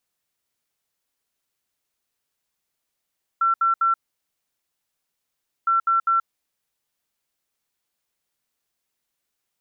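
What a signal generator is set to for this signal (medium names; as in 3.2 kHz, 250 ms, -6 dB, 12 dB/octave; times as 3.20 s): beep pattern sine 1.35 kHz, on 0.13 s, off 0.07 s, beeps 3, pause 1.73 s, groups 2, -16 dBFS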